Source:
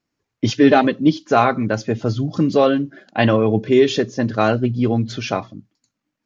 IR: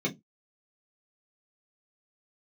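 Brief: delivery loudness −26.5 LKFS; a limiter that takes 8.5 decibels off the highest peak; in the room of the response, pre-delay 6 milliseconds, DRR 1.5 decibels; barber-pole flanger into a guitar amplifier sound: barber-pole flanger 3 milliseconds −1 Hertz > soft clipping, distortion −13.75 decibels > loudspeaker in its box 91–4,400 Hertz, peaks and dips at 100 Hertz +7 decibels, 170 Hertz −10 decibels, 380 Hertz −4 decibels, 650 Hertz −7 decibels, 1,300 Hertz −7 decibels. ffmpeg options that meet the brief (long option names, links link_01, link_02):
-filter_complex "[0:a]alimiter=limit=-9.5dB:level=0:latency=1,asplit=2[link_01][link_02];[1:a]atrim=start_sample=2205,adelay=6[link_03];[link_02][link_03]afir=irnorm=-1:irlink=0,volume=-9dB[link_04];[link_01][link_04]amix=inputs=2:normalize=0,asplit=2[link_05][link_06];[link_06]adelay=3,afreqshift=-1[link_07];[link_05][link_07]amix=inputs=2:normalize=1,asoftclip=threshold=-10.5dB,highpass=91,equalizer=frequency=100:width_type=q:width=4:gain=7,equalizer=frequency=170:width_type=q:width=4:gain=-10,equalizer=frequency=380:width_type=q:width=4:gain=-4,equalizer=frequency=650:width_type=q:width=4:gain=-7,equalizer=frequency=1300:width_type=q:width=4:gain=-7,lowpass=frequency=4400:width=0.5412,lowpass=frequency=4400:width=1.3066,volume=-4.5dB"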